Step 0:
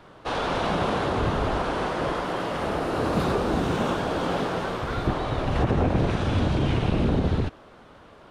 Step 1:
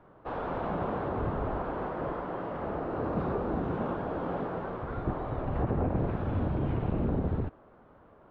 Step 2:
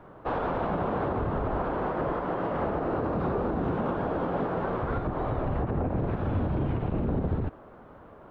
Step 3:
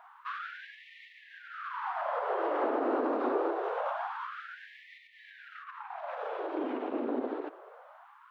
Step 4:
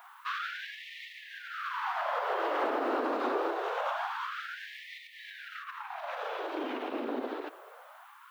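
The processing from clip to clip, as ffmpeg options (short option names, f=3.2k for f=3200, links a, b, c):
-af "lowpass=1.3k,volume=-6.5dB"
-af "alimiter=level_in=3.5dB:limit=-24dB:level=0:latency=1:release=123,volume=-3.5dB,volume=7.5dB"
-af "afftfilt=real='re*gte(b*sr/1024,220*pow(1800/220,0.5+0.5*sin(2*PI*0.25*pts/sr)))':imag='im*gte(b*sr/1024,220*pow(1800/220,0.5+0.5*sin(2*PI*0.25*pts/sr)))':win_size=1024:overlap=0.75"
-af "crystalizer=i=9.5:c=0,volume=-3.5dB"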